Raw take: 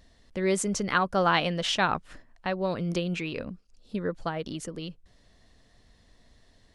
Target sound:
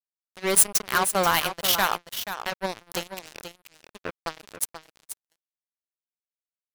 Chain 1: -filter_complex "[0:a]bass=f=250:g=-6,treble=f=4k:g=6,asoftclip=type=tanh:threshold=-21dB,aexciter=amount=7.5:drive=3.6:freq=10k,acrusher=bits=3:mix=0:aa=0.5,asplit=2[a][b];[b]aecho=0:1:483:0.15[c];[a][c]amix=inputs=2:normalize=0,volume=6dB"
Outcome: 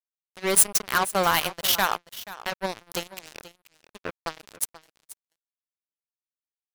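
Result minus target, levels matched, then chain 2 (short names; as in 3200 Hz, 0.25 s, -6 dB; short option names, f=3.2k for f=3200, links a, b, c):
echo-to-direct -6.5 dB
-filter_complex "[0:a]bass=f=250:g=-6,treble=f=4k:g=6,asoftclip=type=tanh:threshold=-21dB,aexciter=amount=7.5:drive=3.6:freq=10k,acrusher=bits=3:mix=0:aa=0.5,asplit=2[a][b];[b]aecho=0:1:483:0.316[c];[a][c]amix=inputs=2:normalize=0,volume=6dB"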